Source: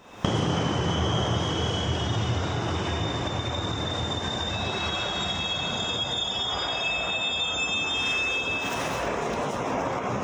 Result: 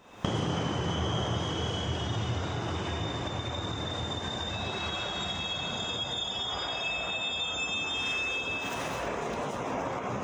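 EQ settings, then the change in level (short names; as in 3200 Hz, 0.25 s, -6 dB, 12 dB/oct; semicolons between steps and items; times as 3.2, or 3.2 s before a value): notch 5500 Hz, Q 19; -5.0 dB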